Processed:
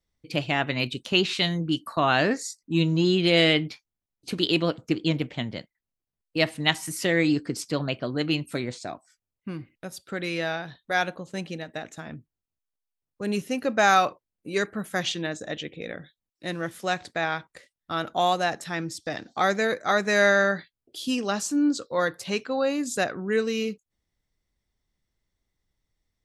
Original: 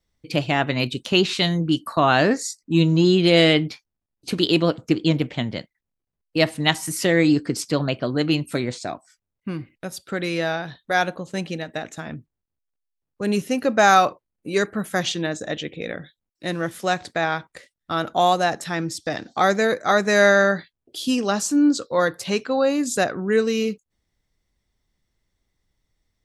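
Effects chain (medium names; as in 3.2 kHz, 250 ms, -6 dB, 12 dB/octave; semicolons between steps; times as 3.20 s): dynamic bell 2.5 kHz, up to +4 dB, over -32 dBFS, Q 0.95; trim -5.5 dB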